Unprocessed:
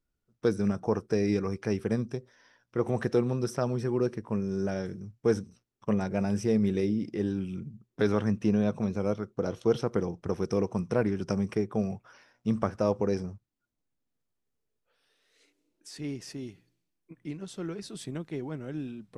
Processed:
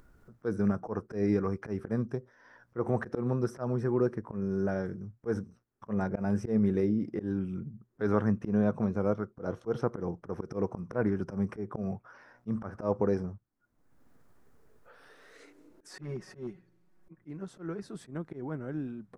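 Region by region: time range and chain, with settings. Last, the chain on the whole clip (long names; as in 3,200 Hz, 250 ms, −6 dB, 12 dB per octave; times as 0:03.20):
0:15.93–0:17.22: high-shelf EQ 5,700 Hz −7 dB + comb filter 5.4 ms, depth 100% + gain into a clipping stage and back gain 30.5 dB
whole clip: high shelf with overshoot 2,100 Hz −10 dB, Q 1.5; upward compression, threshold −40 dBFS; volume swells 118 ms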